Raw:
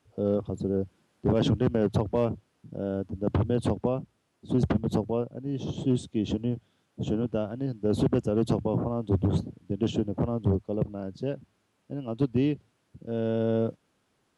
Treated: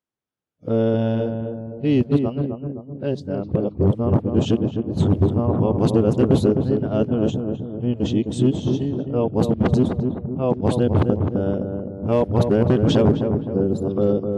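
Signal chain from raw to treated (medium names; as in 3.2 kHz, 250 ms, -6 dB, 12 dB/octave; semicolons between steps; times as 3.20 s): reverse the whole clip; filtered feedback delay 258 ms, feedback 55%, low-pass 1.1 kHz, level -5 dB; spectral noise reduction 27 dB; trim +7 dB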